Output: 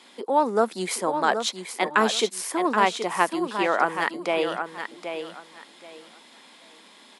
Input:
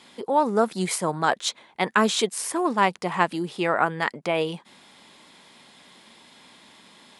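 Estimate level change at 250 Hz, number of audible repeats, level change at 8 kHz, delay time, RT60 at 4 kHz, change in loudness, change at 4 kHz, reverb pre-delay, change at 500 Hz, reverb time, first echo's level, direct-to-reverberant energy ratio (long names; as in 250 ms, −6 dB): −1.5 dB, 3, −1.0 dB, 776 ms, no reverb audible, −0.5 dB, +0.5 dB, no reverb audible, +0.5 dB, no reverb audible, −8.0 dB, no reverb audible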